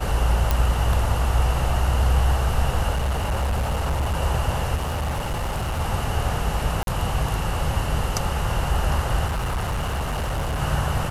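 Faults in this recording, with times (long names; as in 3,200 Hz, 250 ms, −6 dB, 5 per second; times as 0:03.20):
0:00.51: click
0:02.90–0:04.17: clipping −19.5 dBFS
0:04.75–0:05.81: clipping −22 dBFS
0:06.83–0:06.87: drop-out 42 ms
0:09.26–0:10.60: clipping −21.5 dBFS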